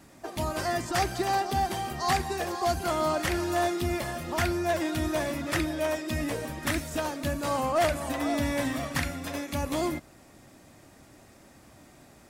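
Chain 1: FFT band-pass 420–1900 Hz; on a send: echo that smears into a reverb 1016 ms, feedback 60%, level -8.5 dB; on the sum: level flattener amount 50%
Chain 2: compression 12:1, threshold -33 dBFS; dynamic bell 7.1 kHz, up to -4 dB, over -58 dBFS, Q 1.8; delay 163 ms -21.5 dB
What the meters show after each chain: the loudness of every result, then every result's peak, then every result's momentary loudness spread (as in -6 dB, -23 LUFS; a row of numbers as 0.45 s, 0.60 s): -27.5 LUFS, -37.0 LUFS; -13.0 dBFS, -23.0 dBFS; 6 LU, 17 LU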